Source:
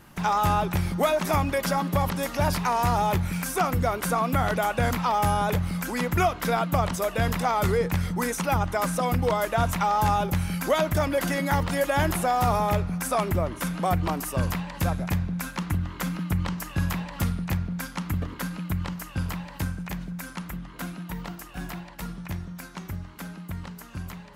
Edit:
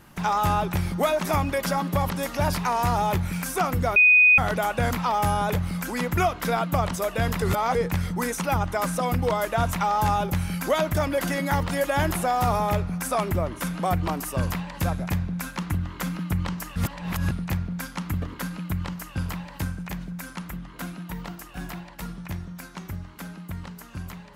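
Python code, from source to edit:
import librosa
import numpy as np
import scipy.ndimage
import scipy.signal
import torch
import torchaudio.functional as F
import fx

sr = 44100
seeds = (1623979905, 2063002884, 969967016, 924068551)

y = fx.edit(x, sr, fx.bleep(start_s=3.96, length_s=0.42, hz=2490.0, db=-12.0),
    fx.reverse_span(start_s=7.42, length_s=0.33),
    fx.reverse_span(start_s=16.76, length_s=0.55), tone=tone)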